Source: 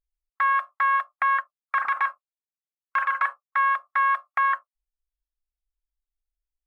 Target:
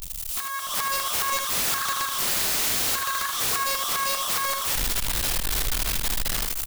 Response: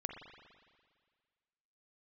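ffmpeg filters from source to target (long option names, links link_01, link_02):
-filter_complex "[0:a]aeval=exprs='val(0)+0.5*0.0355*sgn(val(0))':channel_layout=same,asettb=1/sr,asplit=3[link_01][link_02][link_03];[link_01]atrim=end=1.304[link_04];[link_02]atrim=start=1.3:end=3.43,asetpts=PTS-STARTPTS,afade=type=in:duration=0.004:curve=qsin,afade=type=out:start_time=2.126:duration=0.004:curve=qsin,highpass=frequency=870:width=0.5412,highpass=frequency=870:width=1.3066[link_05];[link_03]atrim=start=3.426[link_06];[link_04][link_05]acrossfade=duration=0.004:curve1=hsin:curve2=qsin[link_07];[link_07][link_06]acrossfade=duration=0.004:curve1=qsin:curve2=hsin,acompressor=threshold=-32dB:ratio=8,alimiter=level_in=3dB:limit=-24dB:level=0:latency=1:release=134,volume=-3dB,dynaudnorm=framelen=180:gausssize=7:maxgain=12.5dB,acrusher=bits=8:dc=4:mix=0:aa=0.000001,aexciter=amount=2:drive=8.6:freq=2800,aeval=exprs='(mod(6.68*val(0)+1,2)-1)/6.68':channel_layout=same,aecho=1:1:51|78:0.168|0.473,volume=-3dB"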